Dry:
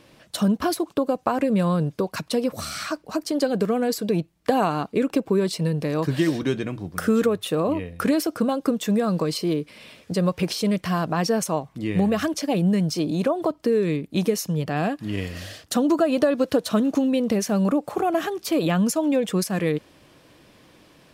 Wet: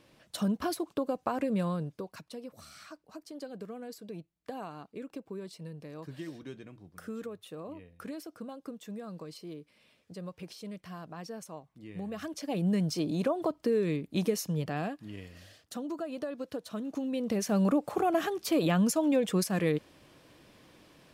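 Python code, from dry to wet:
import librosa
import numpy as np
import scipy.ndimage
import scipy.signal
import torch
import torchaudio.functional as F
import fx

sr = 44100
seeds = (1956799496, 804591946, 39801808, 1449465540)

y = fx.gain(x, sr, db=fx.line((1.61, -9.0), (2.34, -20.0), (11.91, -20.0), (12.74, -7.0), (14.65, -7.0), (15.21, -17.0), (16.75, -17.0), (17.57, -5.0)))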